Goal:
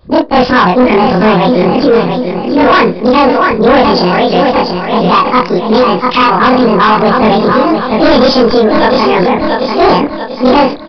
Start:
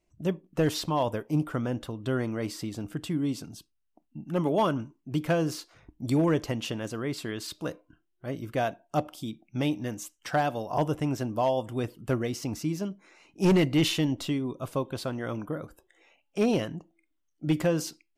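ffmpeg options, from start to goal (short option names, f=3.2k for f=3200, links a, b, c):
-filter_complex "[0:a]afftfilt=real='re':imag='-im':win_size=4096:overlap=0.75,asetrate=73647,aresample=44100,lowshelf=f=93:g=8.5,asplit=2[a][b];[b]aecho=0:1:689|1378|2067|2756:0.335|0.131|0.0509|0.0199[c];[a][c]amix=inputs=2:normalize=0,adynamicequalizer=threshold=0.00355:dfrequency=1100:dqfactor=5.2:tfrequency=1100:tqfactor=5.2:attack=5:release=100:ratio=0.375:range=2.5:mode=boostabove:tftype=bell,aresample=11025,asoftclip=type=tanh:threshold=-29dB,aresample=44100,alimiter=level_in=32dB:limit=-1dB:release=50:level=0:latency=1,volume=-1dB"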